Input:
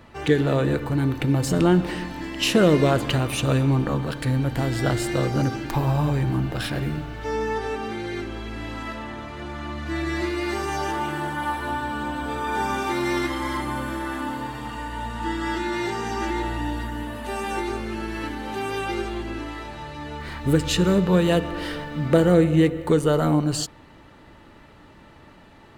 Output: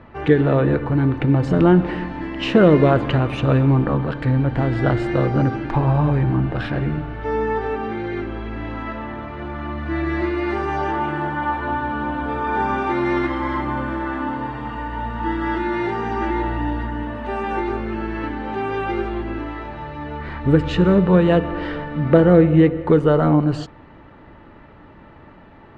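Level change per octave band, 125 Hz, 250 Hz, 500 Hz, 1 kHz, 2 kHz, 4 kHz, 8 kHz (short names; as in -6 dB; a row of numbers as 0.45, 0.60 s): +4.5 dB, +4.5 dB, +4.5 dB, +4.5 dB, +2.0 dB, -5.0 dB, under -15 dB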